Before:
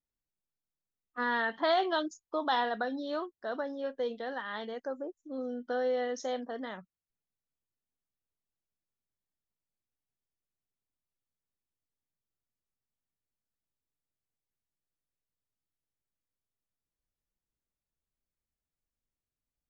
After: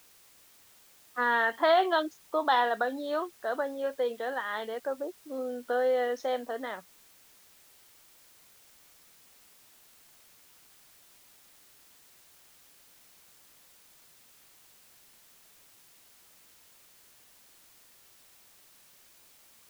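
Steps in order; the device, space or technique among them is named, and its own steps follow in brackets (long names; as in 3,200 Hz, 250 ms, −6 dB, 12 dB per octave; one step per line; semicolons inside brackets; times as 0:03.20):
dictaphone (band-pass filter 360–3,300 Hz; automatic gain control gain up to 5 dB; tape wow and flutter 22 cents; white noise bed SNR 24 dB)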